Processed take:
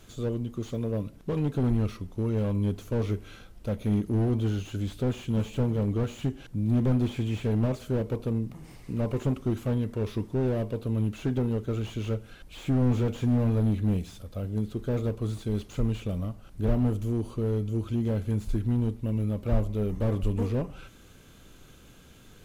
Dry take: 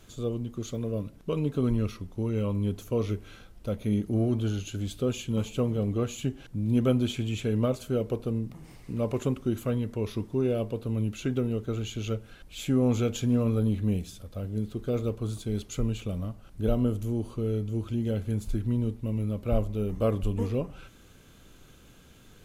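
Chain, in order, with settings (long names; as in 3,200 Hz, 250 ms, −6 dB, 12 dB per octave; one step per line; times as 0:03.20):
slew-rate limiting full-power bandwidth 18 Hz
level +1.5 dB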